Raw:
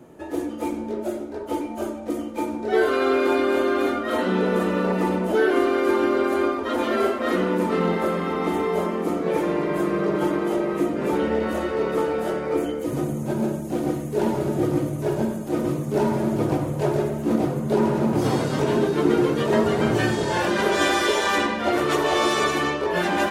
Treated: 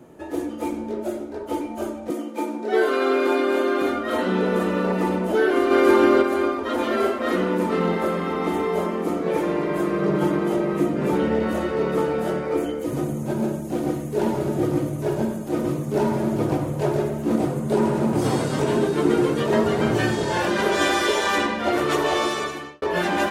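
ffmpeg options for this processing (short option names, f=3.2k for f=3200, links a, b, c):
-filter_complex "[0:a]asettb=1/sr,asplit=3[a][b][c];[a]atrim=end=2.104[d];[b]atrim=start=2.1:end=3.82,asetpts=PTS-STARTPTS,afade=t=in:d=0.004:c=qsin,afade=t=out:st=1.716:d=0.004:c=qsin,highpass=f=200:w=0.5412,highpass=f=200:w=1.3066[e];[c]atrim=start=3.816[f];[d][e]acrossfade=d=0.004:c1=hsin:c2=qsin[g];[g][f]acrossfade=d=0.004:c1=qsin:c2=hsin,asplit=3[h][i][j];[h]afade=t=out:st=5.7:d=0.02[k];[i]acontrast=31,afade=t=in:st=5.7:d=0.02,afade=t=out:st=6.21:d=0.02[l];[j]afade=t=in:st=6.21:d=0.02[m];[k][l][m]amix=inputs=3:normalize=0,asettb=1/sr,asplit=3[n][o][p];[n]atrim=end=10.024[q];[o]atrim=start=10.02:end=12.42,asetpts=PTS-STARTPTS,afade=t=in:d=0.004:c=qsin,afade=t=out:st=2.396:d=0.004:c=qsin,equalizer=f=150:w=1.5:g=7.5[r];[p]atrim=start=12.416[s];[q][r]acrossfade=d=0.004:c1=hsin:c2=qsin[t];[t][s]acrossfade=d=0.004:c1=qsin:c2=hsin,asettb=1/sr,asplit=3[u][v][w];[u]atrim=end=17.334[x];[v]atrim=start=17.33:end=19.4,asetpts=PTS-STARTPTS,afade=t=in:d=0.004:c=qsin,afade=t=out:st=2.066:d=0.004:c=qsin,equalizer=f=8.5k:w=2.7:g=6[y];[w]atrim=start=19.396[z];[x][y]acrossfade=d=0.004:c1=hsin:c2=qsin[aa];[aa][z]acrossfade=d=0.004:c1=qsin:c2=hsin,asplit=2[ab][ac];[ab]atrim=end=22.82,asetpts=PTS-STARTPTS,afade=t=out:st=22.08:d=0.74[ad];[ac]atrim=start=22.82,asetpts=PTS-STARTPTS,afade=t=in:d=0.004:c=hsin[ae];[ad][ae]concat=n=2:v=0:a=1"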